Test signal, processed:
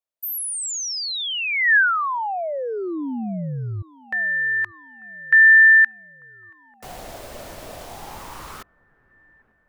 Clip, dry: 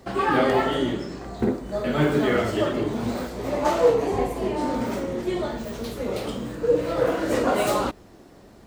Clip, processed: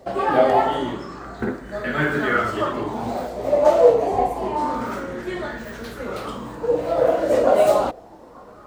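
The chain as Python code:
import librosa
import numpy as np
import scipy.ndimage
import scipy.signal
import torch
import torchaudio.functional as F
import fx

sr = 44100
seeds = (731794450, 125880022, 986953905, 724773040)

y = fx.echo_wet_lowpass(x, sr, ms=893, feedback_pct=60, hz=1100.0, wet_db=-23.5)
y = fx.bell_lfo(y, sr, hz=0.27, low_hz=600.0, high_hz=1700.0, db=14)
y = y * librosa.db_to_amplitude(-3.0)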